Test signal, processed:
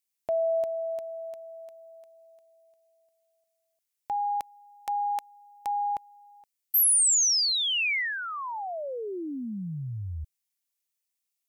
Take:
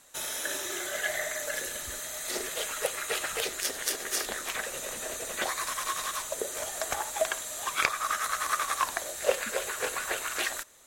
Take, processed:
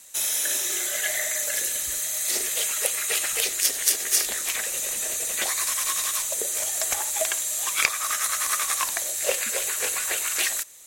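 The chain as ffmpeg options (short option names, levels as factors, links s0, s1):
-af "aexciter=amount=2.6:drive=5.1:freq=2000,volume=0.841"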